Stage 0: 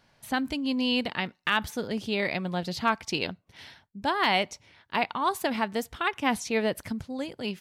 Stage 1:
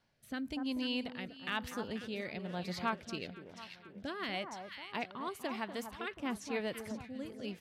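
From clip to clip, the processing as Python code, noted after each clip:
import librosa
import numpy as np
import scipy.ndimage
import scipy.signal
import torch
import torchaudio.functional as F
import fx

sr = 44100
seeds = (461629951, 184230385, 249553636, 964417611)

y = fx.echo_alternate(x, sr, ms=243, hz=1400.0, feedback_pct=65, wet_db=-8.5)
y = fx.rotary(y, sr, hz=1.0)
y = F.gain(torch.from_numpy(y), -8.5).numpy()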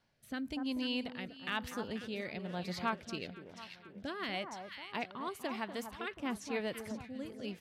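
y = x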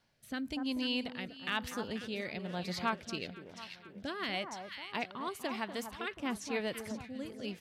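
y = fx.peak_eq(x, sr, hz=6200.0, db=3.0, octaves=2.6)
y = F.gain(torch.from_numpy(y), 1.0).numpy()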